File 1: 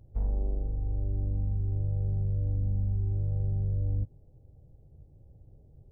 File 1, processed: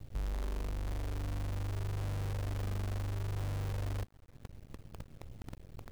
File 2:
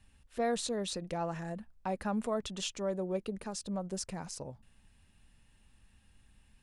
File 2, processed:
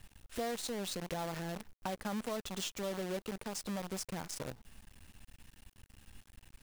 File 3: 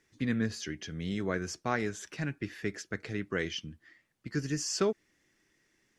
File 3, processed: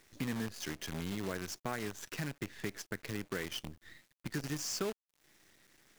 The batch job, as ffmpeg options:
ffmpeg -i in.wav -af "acompressor=threshold=-52dB:ratio=2.5,acrusher=bits=9:dc=4:mix=0:aa=0.000001,volume=9dB" out.wav

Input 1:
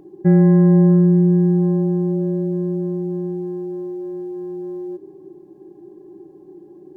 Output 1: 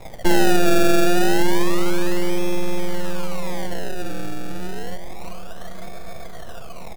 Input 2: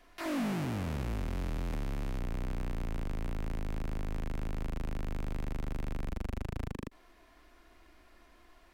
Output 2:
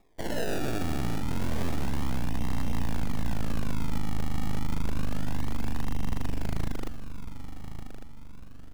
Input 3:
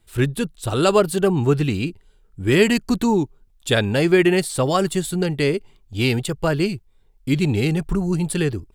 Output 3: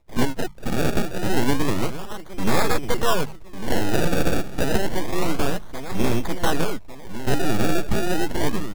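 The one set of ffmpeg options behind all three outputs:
ffmpeg -i in.wav -filter_complex "[0:a]agate=range=-56dB:threshold=-46dB:ratio=16:detection=peak,aecho=1:1:1.1:1,asplit=2[link_01][link_02];[link_02]acompressor=mode=upward:threshold=-19dB:ratio=2.5,volume=-2dB[link_03];[link_01][link_03]amix=inputs=2:normalize=0,aeval=exprs='abs(val(0))':channel_layout=same,aemphasis=mode=production:type=75kf,bandreject=frequency=50:width_type=h:width=6,bandreject=frequency=100:width_type=h:width=6,bandreject=frequency=150:width_type=h:width=6,bandreject=frequency=200:width_type=h:width=6,acompressor=threshold=-16dB:ratio=1.5,lowpass=2500,asplit=2[link_04][link_05];[link_05]adelay=1151,lowpass=frequency=1300:poles=1,volume=-10dB,asplit=2[link_06][link_07];[link_07]adelay=1151,lowpass=frequency=1300:poles=1,volume=0.45,asplit=2[link_08][link_09];[link_09]adelay=1151,lowpass=frequency=1300:poles=1,volume=0.45,asplit=2[link_10][link_11];[link_11]adelay=1151,lowpass=frequency=1300:poles=1,volume=0.45,asplit=2[link_12][link_13];[link_13]adelay=1151,lowpass=frequency=1300:poles=1,volume=0.45[link_14];[link_04][link_06][link_08][link_10][link_12][link_14]amix=inputs=6:normalize=0,acrusher=samples=29:mix=1:aa=0.000001:lfo=1:lforange=29:lforate=0.29,volume=-3dB" out.wav

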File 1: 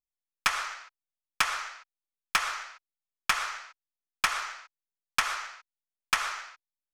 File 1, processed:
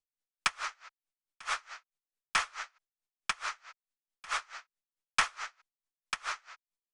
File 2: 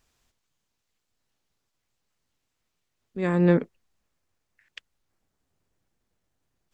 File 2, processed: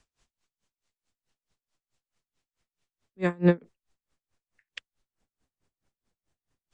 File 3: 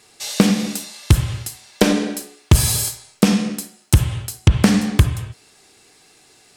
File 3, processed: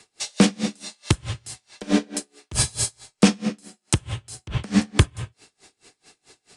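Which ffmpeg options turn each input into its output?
ffmpeg -i in.wav -filter_complex "[0:a]acrossover=split=230|480|3100[link_01][link_02][link_03][link_04];[link_01]alimiter=limit=-9.5dB:level=0:latency=1:release=467[link_05];[link_05][link_02][link_03][link_04]amix=inputs=4:normalize=0,aresample=22050,aresample=44100,aeval=exprs='val(0)*pow(10,-29*(0.5-0.5*cos(2*PI*4.6*n/s))/20)':channel_layout=same,volume=2.5dB" out.wav

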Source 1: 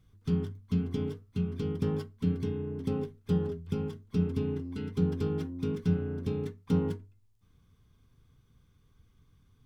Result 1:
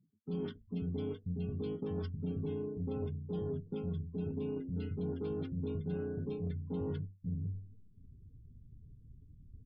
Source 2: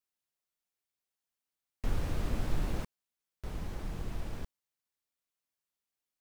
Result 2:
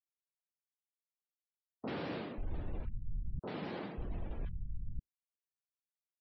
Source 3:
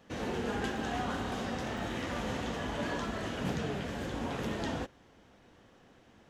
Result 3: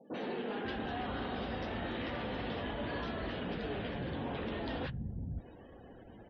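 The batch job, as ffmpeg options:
ffmpeg -i in.wav -filter_complex "[0:a]lowpass=frequency=5000:width=0.5412,lowpass=frequency=5000:width=1.3066,acrossover=split=170|1200[link_01][link_02][link_03];[link_03]adelay=40[link_04];[link_01]adelay=540[link_05];[link_05][link_02][link_04]amix=inputs=3:normalize=0,areverse,acompressor=threshold=-45dB:ratio=4,areverse,asoftclip=type=tanh:threshold=-36.5dB,afftdn=noise_reduction=33:noise_floor=-63,volume=9dB" out.wav

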